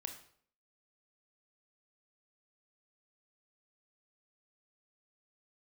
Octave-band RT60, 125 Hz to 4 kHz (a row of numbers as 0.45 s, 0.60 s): 0.60 s, 0.60 s, 0.60 s, 0.55 s, 0.50 s, 0.50 s